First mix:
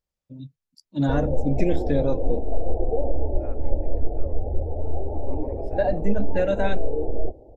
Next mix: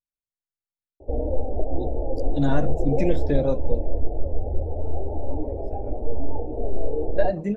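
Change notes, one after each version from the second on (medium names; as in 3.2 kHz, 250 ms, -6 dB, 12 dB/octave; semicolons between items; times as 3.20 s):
first voice: entry +1.40 s; second voice -7.0 dB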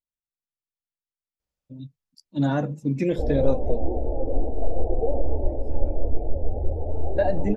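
background: entry +2.10 s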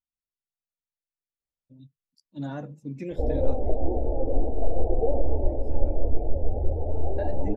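first voice -11.0 dB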